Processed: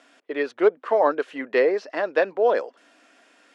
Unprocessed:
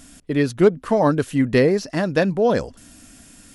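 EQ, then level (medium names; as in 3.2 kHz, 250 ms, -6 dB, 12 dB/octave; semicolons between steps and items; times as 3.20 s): high-pass 410 Hz 24 dB/octave; low-pass 2.6 kHz 12 dB/octave; 0.0 dB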